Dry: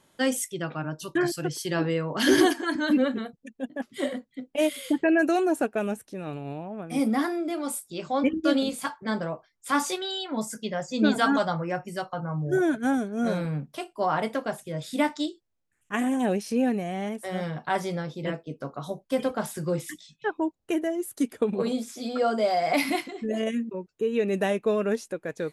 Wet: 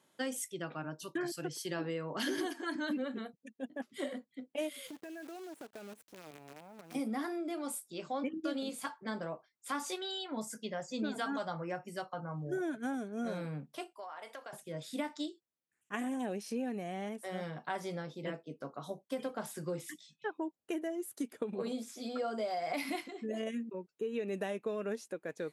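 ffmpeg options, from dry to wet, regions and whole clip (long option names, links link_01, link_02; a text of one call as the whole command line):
ffmpeg -i in.wav -filter_complex "[0:a]asettb=1/sr,asplit=3[link_01][link_02][link_03];[link_01]atrim=end=4.874[link_04];[link_02]atrim=start=4.87:end=6.95,asetpts=PTS-STARTPTS,afade=type=in:duration=0.004:curve=qsin,afade=type=out:start_time=2.076:duration=0.004:curve=qsin,acrusher=bits=6:dc=4:mix=0:aa=0.000001,acompressor=threshold=-38dB:ratio=5:attack=3.2:release=140:knee=1:detection=peak[link_05];[link_03]atrim=start=6.946[link_06];[link_04][link_05]acrossfade=duration=0.004:curve1=hsin:curve2=qsin[link_07];[link_07][link_06]acrossfade=duration=0.004:curve1=qsin:curve2=hsin,asettb=1/sr,asplit=3[link_08][link_09][link_10];[link_08]atrim=end=13.934[link_11];[link_09]atrim=start=13.93:end=14.53,asetpts=PTS-STARTPTS,afade=type=in:duration=0.004:curve=qsin,afade=type=out:start_time=0.596:duration=0.004:curve=qsin,highpass=680,acompressor=threshold=-34dB:ratio=8:attack=3.2:release=140:knee=1:detection=peak[link_12];[link_10]atrim=start=14.526[link_13];[link_11][link_12]acrossfade=duration=0.004:curve1=hsin:curve2=qsin[link_14];[link_14][link_13]acrossfade=duration=0.004:curve1=qsin:curve2=hsin,highpass=170,acompressor=threshold=-25dB:ratio=6,volume=-7.5dB" out.wav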